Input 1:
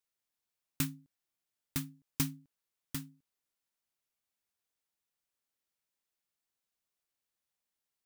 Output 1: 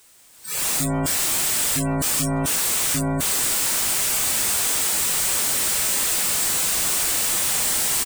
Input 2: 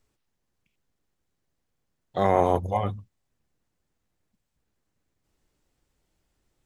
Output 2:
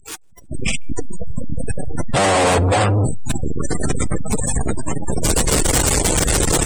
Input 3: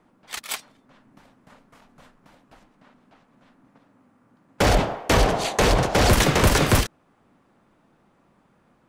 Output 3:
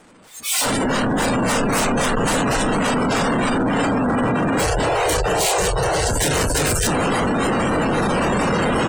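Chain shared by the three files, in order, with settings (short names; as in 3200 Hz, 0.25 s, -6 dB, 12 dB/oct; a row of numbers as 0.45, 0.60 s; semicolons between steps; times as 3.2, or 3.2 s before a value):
infinite clipping; bell 8300 Hz +8 dB 0.46 oct; spectral gate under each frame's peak -25 dB strong; dynamic EQ 470 Hz, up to +5 dB, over -49 dBFS, Q 5; feedback echo 0.157 s, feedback 54%, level -24 dB; AGC gain up to 12 dB; spectral noise reduction 20 dB; match loudness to -19 LUFS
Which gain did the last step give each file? +12.5, +5.5, -5.5 dB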